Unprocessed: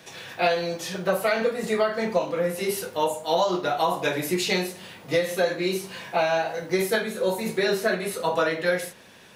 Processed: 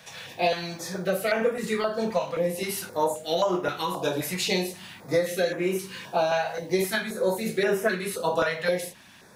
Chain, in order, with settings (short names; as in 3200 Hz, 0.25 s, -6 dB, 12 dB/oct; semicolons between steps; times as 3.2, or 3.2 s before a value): stepped notch 3.8 Hz 330–4200 Hz